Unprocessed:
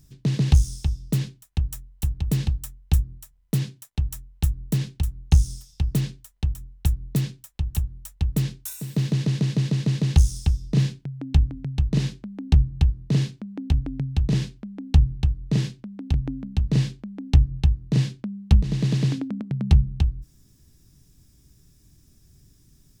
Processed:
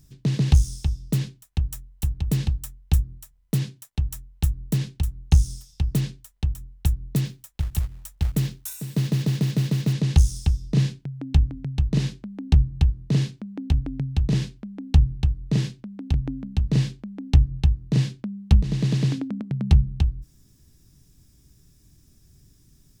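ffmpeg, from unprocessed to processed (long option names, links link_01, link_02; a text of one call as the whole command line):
ffmpeg -i in.wav -filter_complex "[0:a]asettb=1/sr,asplit=3[link_01][link_02][link_03];[link_01]atrim=end=7.254[link_04];[link_02]atrim=start=7.25:end=9.93,asetpts=PTS-STARTPTS,afade=type=in:duration=0.004:curve=qsin,afade=type=out:start_time=2.676:duration=0.004:curve=qsin,acrusher=bits=6:mode=log:mix=0:aa=0.000001[link_05];[link_03]atrim=start=9.926[link_06];[link_04][link_05]acrossfade=duration=0.004:curve1=hsin:curve2=qsin[link_07];[link_07][link_06]acrossfade=duration=0.004:curve1=qsin:curve2=hsin" out.wav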